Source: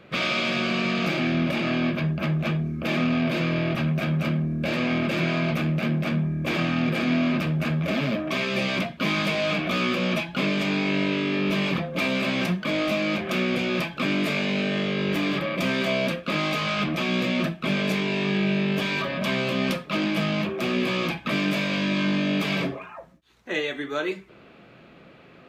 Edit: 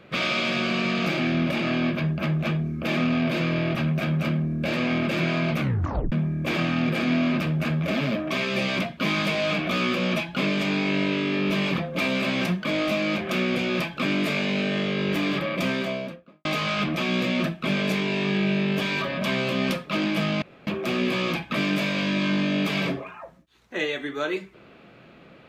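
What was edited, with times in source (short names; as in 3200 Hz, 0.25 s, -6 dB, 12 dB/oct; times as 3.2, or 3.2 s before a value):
5.59 tape stop 0.53 s
15.57–16.45 studio fade out
20.42 insert room tone 0.25 s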